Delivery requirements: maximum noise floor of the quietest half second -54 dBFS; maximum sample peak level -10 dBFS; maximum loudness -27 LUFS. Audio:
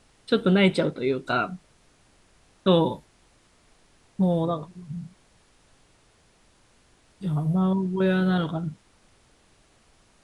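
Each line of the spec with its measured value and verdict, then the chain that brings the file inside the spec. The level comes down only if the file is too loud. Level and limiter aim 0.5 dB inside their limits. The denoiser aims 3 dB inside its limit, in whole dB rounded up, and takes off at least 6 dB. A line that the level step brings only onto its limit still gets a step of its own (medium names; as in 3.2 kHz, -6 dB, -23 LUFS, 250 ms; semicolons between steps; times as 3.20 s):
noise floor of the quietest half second -61 dBFS: pass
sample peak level -7.5 dBFS: fail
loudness -24.5 LUFS: fail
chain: trim -3 dB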